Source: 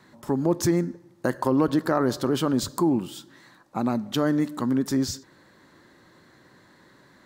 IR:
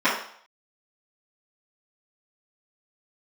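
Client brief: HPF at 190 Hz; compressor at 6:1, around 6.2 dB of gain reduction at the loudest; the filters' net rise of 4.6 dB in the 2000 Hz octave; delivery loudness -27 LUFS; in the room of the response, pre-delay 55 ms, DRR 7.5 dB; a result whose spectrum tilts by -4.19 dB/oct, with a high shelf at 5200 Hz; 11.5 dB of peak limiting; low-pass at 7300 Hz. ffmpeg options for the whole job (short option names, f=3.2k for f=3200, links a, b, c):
-filter_complex "[0:a]highpass=190,lowpass=7.3k,equalizer=f=2k:t=o:g=5.5,highshelf=f=5.2k:g=5,acompressor=threshold=-24dB:ratio=6,alimiter=limit=-21dB:level=0:latency=1,asplit=2[a][b];[1:a]atrim=start_sample=2205,adelay=55[c];[b][c]afir=irnorm=-1:irlink=0,volume=-26.5dB[d];[a][d]amix=inputs=2:normalize=0,volume=4.5dB"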